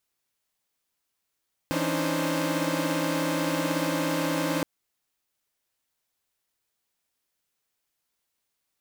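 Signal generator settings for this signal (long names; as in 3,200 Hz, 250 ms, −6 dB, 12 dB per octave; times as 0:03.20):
held notes E3/C#4/D4/D#4/C5 saw, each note −29 dBFS 2.92 s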